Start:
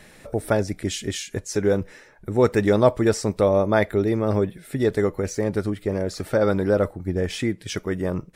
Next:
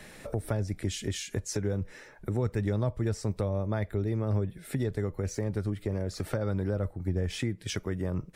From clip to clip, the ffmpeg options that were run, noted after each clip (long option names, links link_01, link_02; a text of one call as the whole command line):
ffmpeg -i in.wav -filter_complex "[0:a]acrossover=split=140[link_01][link_02];[link_02]acompressor=threshold=-32dB:ratio=6[link_03];[link_01][link_03]amix=inputs=2:normalize=0" out.wav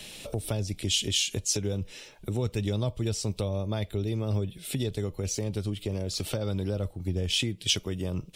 ffmpeg -i in.wav -af "highshelf=frequency=2300:width_type=q:width=3:gain=8.5" out.wav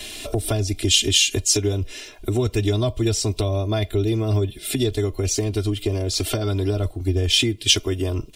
ffmpeg -i in.wav -af "aecho=1:1:2.9:0.98,volume=6.5dB" out.wav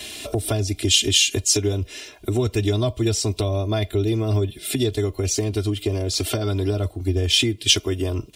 ffmpeg -i in.wav -af "highpass=60" out.wav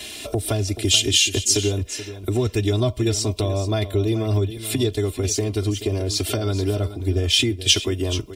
ffmpeg -i in.wav -af "aecho=1:1:430:0.224" out.wav